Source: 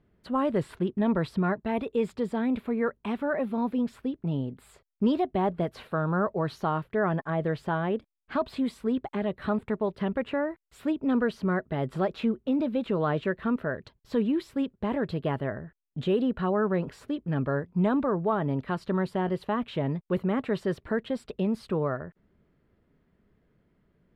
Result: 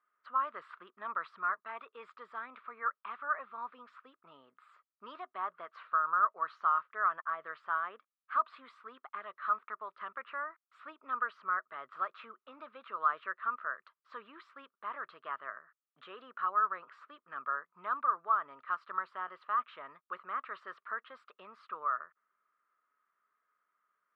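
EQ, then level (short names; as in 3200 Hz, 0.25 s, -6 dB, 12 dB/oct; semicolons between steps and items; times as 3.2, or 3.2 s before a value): ladder band-pass 1300 Hz, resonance 80%; bell 820 Hz -7 dB 0.2 oct; +5.0 dB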